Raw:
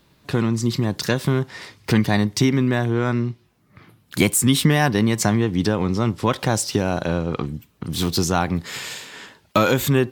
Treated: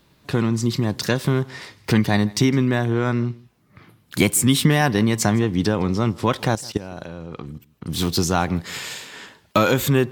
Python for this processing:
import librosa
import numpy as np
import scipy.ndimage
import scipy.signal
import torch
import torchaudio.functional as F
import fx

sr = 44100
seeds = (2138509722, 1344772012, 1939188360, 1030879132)

p1 = fx.level_steps(x, sr, step_db=17, at=(6.55, 7.86))
y = p1 + fx.echo_single(p1, sr, ms=159, db=-23.5, dry=0)